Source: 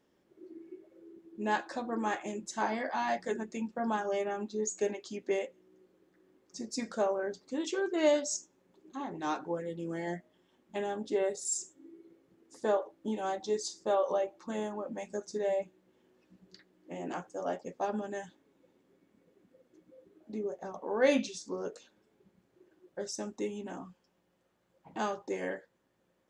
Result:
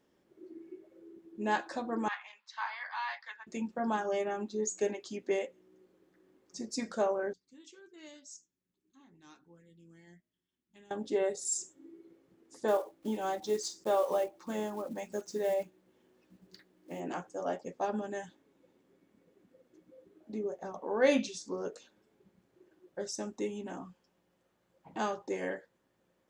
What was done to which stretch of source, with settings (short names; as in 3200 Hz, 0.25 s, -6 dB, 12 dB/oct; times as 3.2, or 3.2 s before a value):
2.08–3.47 elliptic band-pass 1000–4500 Hz, stop band 50 dB
7.33–10.91 passive tone stack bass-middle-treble 6-0-2
12.68–17.01 block floating point 5-bit